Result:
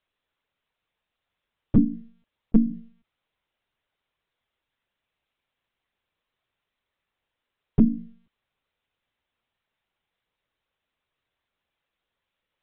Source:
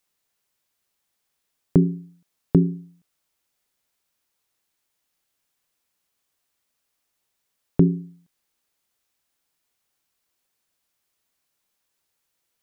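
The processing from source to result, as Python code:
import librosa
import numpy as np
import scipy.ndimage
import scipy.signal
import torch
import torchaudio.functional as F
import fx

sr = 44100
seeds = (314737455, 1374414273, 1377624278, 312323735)

y = fx.formant_shift(x, sr, semitones=-3)
y = fx.lpc_monotone(y, sr, seeds[0], pitch_hz=230.0, order=16)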